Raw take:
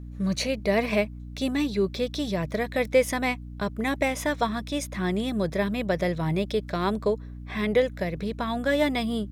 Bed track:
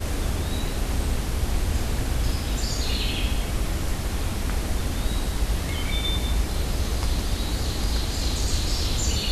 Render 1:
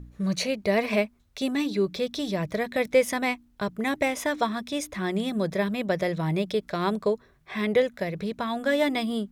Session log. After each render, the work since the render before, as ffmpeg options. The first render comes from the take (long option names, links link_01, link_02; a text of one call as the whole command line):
ffmpeg -i in.wav -af "bandreject=frequency=60:width_type=h:width=4,bandreject=frequency=120:width_type=h:width=4,bandreject=frequency=180:width_type=h:width=4,bandreject=frequency=240:width_type=h:width=4,bandreject=frequency=300:width_type=h:width=4" out.wav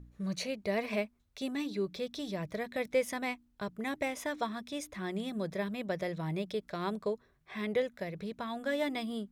ffmpeg -i in.wav -af "volume=-9dB" out.wav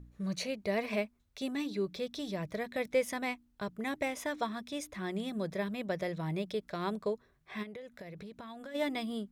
ffmpeg -i in.wav -filter_complex "[0:a]asplit=3[link_01][link_02][link_03];[link_01]afade=type=out:start_time=7.62:duration=0.02[link_04];[link_02]acompressor=threshold=-42dB:ratio=10:attack=3.2:release=140:knee=1:detection=peak,afade=type=in:start_time=7.62:duration=0.02,afade=type=out:start_time=8.74:duration=0.02[link_05];[link_03]afade=type=in:start_time=8.74:duration=0.02[link_06];[link_04][link_05][link_06]amix=inputs=3:normalize=0" out.wav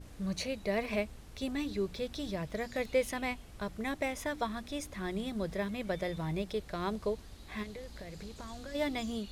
ffmpeg -i in.wav -i bed.wav -filter_complex "[1:a]volume=-25dB[link_01];[0:a][link_01]amix=inputs=2:normalize=0" out.wav